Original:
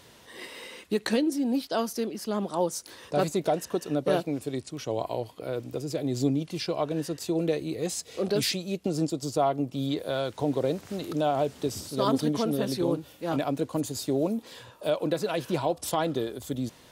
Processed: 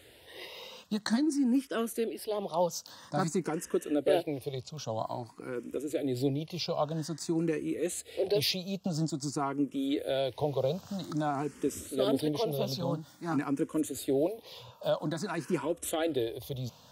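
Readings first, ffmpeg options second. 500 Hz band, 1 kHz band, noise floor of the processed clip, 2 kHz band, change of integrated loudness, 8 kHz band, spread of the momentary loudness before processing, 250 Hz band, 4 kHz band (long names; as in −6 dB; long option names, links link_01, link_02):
−3.5 dB, −5.0 dB, −57 dBFS, −3.0 dB, −3.0 dB, −3.5 dB, 7 LU, −3.0 dB, −2.5 dB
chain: -filter_complex "[0:a]asplit=2[link_01][link_02];[link_02]afreqshift=0.5[link_03];[link_01][link_03]amix=inputs=2:normalize=1"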